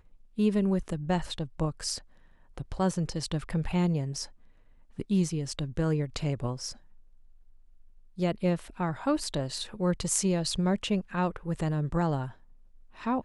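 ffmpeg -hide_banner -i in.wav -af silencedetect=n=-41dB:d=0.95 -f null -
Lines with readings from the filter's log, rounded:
silence_start: 6.74
silence_end: 8.18 | silence_duration: 1.45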